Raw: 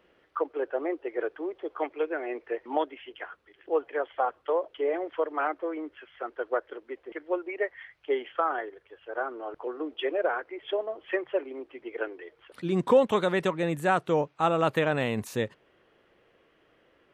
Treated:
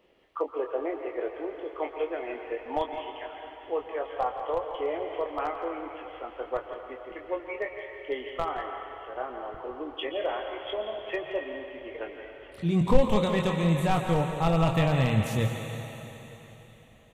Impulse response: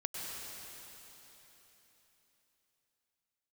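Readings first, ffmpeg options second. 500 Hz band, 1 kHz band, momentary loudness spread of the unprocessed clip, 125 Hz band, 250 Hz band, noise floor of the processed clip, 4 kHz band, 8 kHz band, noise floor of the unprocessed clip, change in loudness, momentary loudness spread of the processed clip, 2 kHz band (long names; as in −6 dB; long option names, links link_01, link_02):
−2.0 dB, −1.0 dB, 15 LU, +9.5 dB, +2.5 dB, −51 dBFS, +2.5 dB, can't be measured, −65 dBFS, −0.5 dB, 16 LU, −3.0 dB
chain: -filter_complex "[0:a]asplit=2[link_01][link_02];[link_02]asuperstop=centerf=5100:order=4:qfactor=3.7[link_03];[1:a]atrim=start_sample=2205,lowshelf=frequency=410:gain=-11.5,adelay=24[link_04];[link_03][link_04]afir=irnorm=-1:irlink=0,volume=-2dB[link_05];[link_01][link_05]amix=inputs=2:normalize=0,aeval=exprs='clip(val(0),-1,0.15)':channel_layout=same,equalizer=frequency=1500:width_type=o:width=0.45:gain=-12,asplit=2[link_06][link_07];[link_07]adelay=169.1,volume=-11dB,highshelf=frequency=4000:gain=-3.8[link_08];[link_06][link_08]amix=inputs=2:normalize=0,asubboost=boost=10.5:cutoff=110,bandreject=frequency=60:width_type=h:width=6,bandreject=frequency=120:width_type=h:width=6,bandreject=frequency=180:width_type=h:width=6"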